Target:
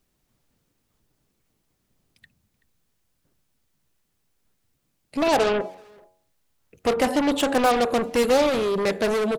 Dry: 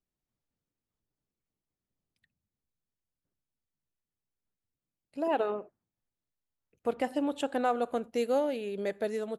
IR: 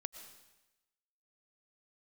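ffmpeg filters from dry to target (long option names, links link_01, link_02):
-filter_complex "[0:a]bandreject=frequency=92.32:width_type=h:width=4,bandreject=frequency=184.64:width_type=h:width=4,bandreject=frequency=276.96:width_type=h:width=4,bandreject=frequency=369.28:width_type=h:width=4,bandreject=frequency=461.6:width_type=h:width=4,bandreject=frequency=553.92:width_type=h:width=4,bandreject=frequency=646.24:width_type=h:width=4,bandreject=frequency=738.56:width_type=h:width=4,bandreject=frequency=830.88:width_type=h:width=4,bandreject=frequency=923.2:width_type=h:width=4,bandreject=frequency=1015.52:width_type=h:width=4,asplit=2[link_01][link_02];[link_02]aeval=exprs='0.0398*sin(PI/2*2.82*val(0)/0.0398)':channel_layout=same,volume=-7dB[link_03];[link_01][link_03]amix=inputs=2:normalize=0,asplit=2[link_04][link_05];[link_05]adelay=380,highpass=300,lowpass=3400,asoftclip=type=hard:threshold=-39.5dB,volume=-18dB[link_06];[link_04][link_06]amix=inputs=2:normalize=0,volume=9dB"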